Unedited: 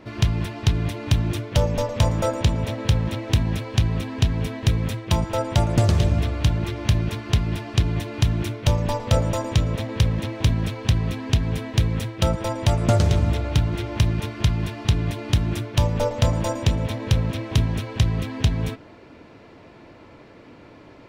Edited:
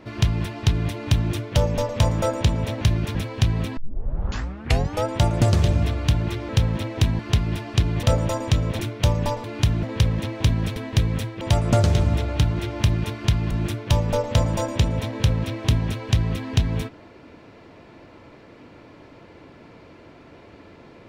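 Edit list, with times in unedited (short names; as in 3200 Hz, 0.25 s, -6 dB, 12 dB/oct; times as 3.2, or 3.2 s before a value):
2.81–3.51 swap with 6.85–7.19
4.13 tape start 1.28 s
8.03–8.42 swap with 9.07–9.83
10.76–11.57 cut
12.22–12.57 cut
14.67–15.38 cut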